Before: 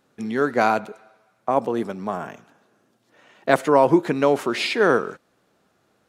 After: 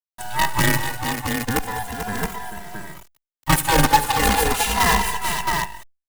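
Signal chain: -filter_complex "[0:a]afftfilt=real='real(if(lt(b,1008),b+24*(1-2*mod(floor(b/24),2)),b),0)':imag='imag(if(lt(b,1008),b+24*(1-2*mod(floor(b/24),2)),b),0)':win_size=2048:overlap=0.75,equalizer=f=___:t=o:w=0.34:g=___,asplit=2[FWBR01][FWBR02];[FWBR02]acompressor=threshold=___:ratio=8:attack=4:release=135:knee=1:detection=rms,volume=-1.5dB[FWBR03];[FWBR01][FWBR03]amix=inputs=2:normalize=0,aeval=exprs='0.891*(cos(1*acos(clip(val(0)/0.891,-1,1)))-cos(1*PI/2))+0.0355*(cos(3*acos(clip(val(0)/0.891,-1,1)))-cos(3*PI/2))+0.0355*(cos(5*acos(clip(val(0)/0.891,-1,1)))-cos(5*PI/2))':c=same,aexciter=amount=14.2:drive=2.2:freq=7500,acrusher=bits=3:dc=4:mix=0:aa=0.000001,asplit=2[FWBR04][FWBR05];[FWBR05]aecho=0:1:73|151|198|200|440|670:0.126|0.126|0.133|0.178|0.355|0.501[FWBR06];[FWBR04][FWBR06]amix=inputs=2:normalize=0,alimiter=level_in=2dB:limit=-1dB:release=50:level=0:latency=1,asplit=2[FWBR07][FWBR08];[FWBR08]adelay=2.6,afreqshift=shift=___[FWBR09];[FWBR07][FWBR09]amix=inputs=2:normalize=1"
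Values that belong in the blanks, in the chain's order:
660, -5, -29dB, -0.37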